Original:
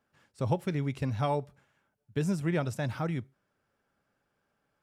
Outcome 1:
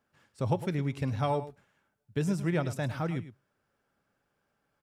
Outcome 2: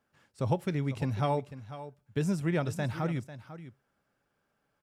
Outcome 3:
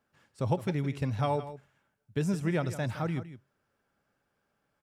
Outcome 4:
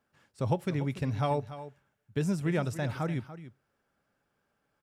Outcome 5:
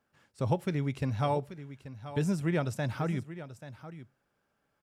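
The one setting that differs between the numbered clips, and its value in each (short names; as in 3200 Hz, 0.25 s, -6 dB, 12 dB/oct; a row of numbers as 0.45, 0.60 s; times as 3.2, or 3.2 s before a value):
echo, time: 0.106, 0.496, 0.163, 0.289, 0.834 s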